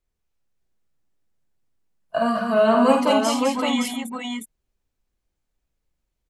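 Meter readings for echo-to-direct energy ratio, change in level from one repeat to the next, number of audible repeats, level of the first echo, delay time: 0.0 dB, no regular repeats, 3, -6.5 dB, 50 ms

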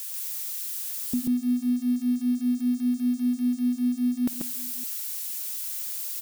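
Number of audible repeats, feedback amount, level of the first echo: 3, no regular repeats, -19.0 dB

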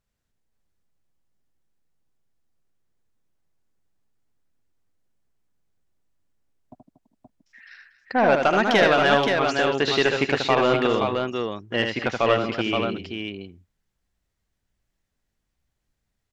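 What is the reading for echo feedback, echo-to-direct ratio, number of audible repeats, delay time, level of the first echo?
no regular repeats, -1.5 dB, 3, 77 ms, -5.0 dB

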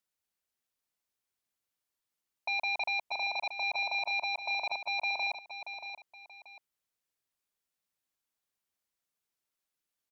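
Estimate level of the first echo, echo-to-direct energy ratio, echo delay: -9.5 dB, -9.0 dB, 631 ms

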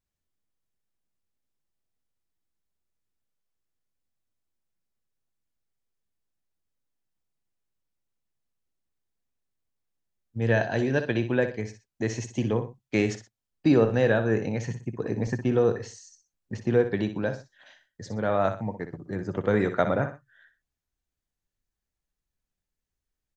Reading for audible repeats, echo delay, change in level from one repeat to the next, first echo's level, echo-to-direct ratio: 2, 61 ms, -10.0 dB, -10.0 dB, -9.5 dB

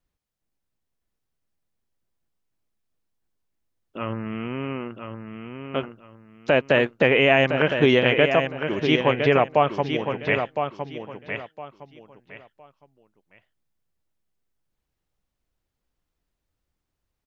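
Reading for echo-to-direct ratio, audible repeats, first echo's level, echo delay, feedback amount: -6.5 dB, 3, -7.0 dB, 1011 ms, 24%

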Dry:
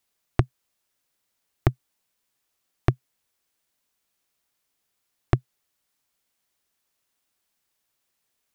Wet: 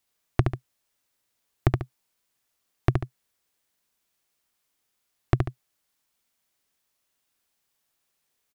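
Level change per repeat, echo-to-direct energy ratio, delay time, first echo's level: -8.5 dB, -4.0 dB, 71 ms, -4.5 dB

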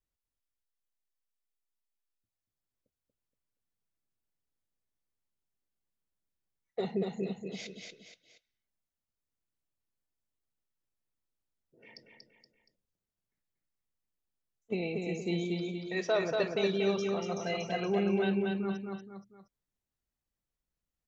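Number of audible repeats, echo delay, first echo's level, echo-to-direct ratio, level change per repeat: 3, 236 ms, -3.5 dB, -2.5 dB, -7.5 dB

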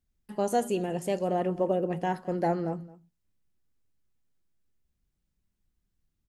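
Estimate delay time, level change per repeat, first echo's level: 217 ms, no regular repeats, -20.5 dB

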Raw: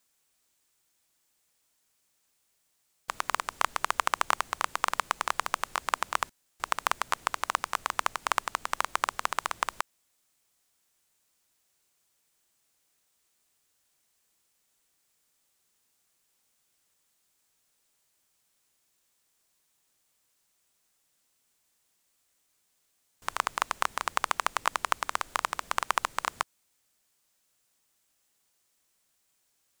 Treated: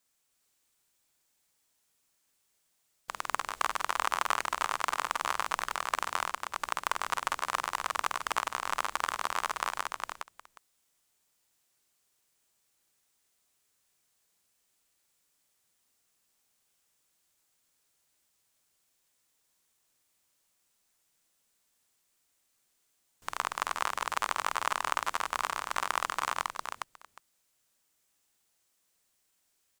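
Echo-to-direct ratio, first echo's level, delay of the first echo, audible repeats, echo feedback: 0.0 dB, -4.0 dB, 49 ms, 5, no regular repeats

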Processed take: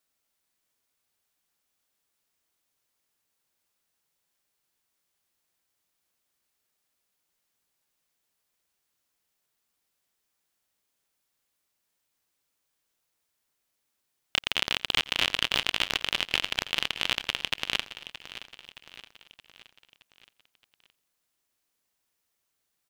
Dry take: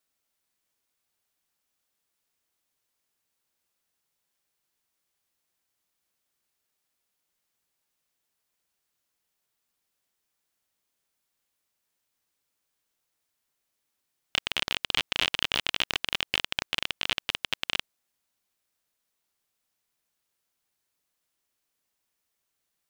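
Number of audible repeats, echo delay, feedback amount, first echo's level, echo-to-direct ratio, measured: 6, 87 ms, no regular repeats, -22.5 dB, -12.0 dB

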